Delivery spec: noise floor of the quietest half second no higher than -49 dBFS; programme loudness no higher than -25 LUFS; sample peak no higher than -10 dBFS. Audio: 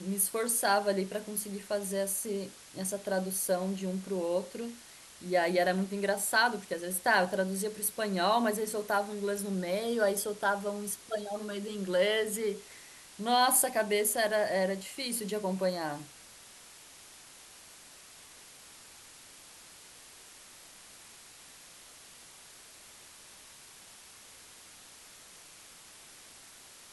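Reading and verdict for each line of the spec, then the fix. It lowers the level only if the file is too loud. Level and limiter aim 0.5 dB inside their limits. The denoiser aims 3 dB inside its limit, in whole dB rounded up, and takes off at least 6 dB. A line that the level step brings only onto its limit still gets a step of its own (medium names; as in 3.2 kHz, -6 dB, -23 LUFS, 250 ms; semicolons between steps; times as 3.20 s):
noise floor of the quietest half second -53 dBFS: pass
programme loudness -30.5 LUFS: pass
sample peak -12.5 dBFS: pass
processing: none needed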